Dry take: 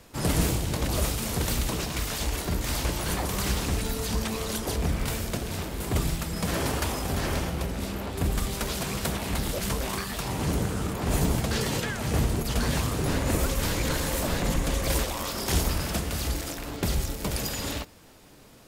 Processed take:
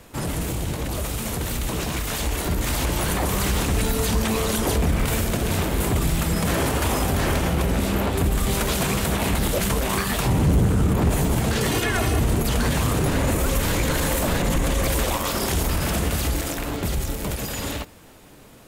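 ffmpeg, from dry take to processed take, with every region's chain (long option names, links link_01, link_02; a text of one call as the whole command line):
ffmpeg -i in.wav -filter_complex "[0:a]asettb=1/sr,asplit=3[link_01][link_02][link_03];[link_01]atrim=end=10.264[link_04];[link_02]atrim=start=10.26:end=11.1,asetpts=PTS-STARTPTS,afade=type=in:duration=0.004:curve=qsin,afade=type=out:start_time=0.836:duration=0.004:curve=qsin,lowshelf=frequency=310:gain=10,asoftclip=type=hard:threshold=-14.5dB[link_05];[link_03]atrim=start=11.096[link_06];[link_04][link_05]acrossfade=duration=0.004:curve1=hsin:curve2=qsin[link_07];[link_07][link_06]acrossfade=duration=0.004:curve1=qsin:curve2=hsin,asettb=1/sr,asplit=3[link_08][link_09][link_10];[link_08]atrim=end=11.714[link_11];[link_09]atrim=start=11.71:end=12.2,asetpts=PTS-STARTPTS,afade=type=in:duration=0.004:curve=qsin,afade=type=out:start_time=0.486:duration=0.004:curve=qsin,bandreject=frequency=7000:width=13,aecho=1:1:2.8:0.75,atrim=end_sample=21609[link_12];[link_10]atrim=start=12.196[link_13];[link_11][link_12]acrossfade=duration=0.004:curve1=hsin:curve2=qsin[link_14];[link_14][link_13]acrossfade=duration=0.004:curve1=qsin:curve2=hsin,alimiter=limit=-23.5dB:level=0:latency=1:release=54,equalizer=frequency=5000:width=1.9:gain=-5,dynaudnorm=framelen=280:gausssize=17:maxgain=5.5dB,volume=5.5dB" out.wav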